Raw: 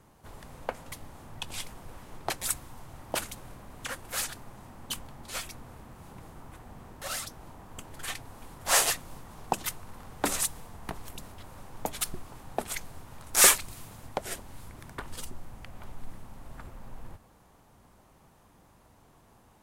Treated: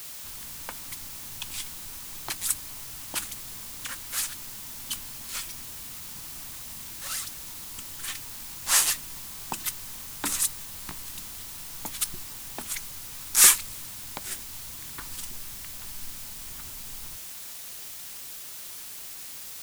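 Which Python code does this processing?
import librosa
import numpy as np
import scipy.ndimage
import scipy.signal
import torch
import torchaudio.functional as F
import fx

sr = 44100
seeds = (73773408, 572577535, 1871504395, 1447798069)

p1 = fx.band_shelf(x, sr, hz=560.0, db=-9.0, octaves=1.1)
p2 = fx.quant_dither(p1, sr, seeds[0], bits=6, dither='triangular')
p3 = p1 + (p2 * 10.0 ** (-3.0 / 20.0))
p4 = fx.high_shelf(p3, sr, hz=2600.0, db=8.0)
y = p4 * 10.0 ** (-8.5 / 20.0)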